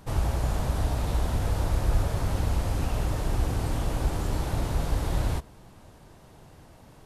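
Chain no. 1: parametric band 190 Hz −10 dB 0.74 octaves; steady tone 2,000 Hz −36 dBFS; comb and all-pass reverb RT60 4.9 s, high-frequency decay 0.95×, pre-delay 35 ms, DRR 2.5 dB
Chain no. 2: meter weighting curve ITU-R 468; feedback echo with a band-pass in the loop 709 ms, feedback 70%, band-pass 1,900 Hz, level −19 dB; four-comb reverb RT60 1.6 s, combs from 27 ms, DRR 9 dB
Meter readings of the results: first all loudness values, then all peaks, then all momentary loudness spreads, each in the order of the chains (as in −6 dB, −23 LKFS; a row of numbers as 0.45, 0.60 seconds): −27.5, −31.5 LKFS; −9.5, −20.0 dBFS; 6, 18 LU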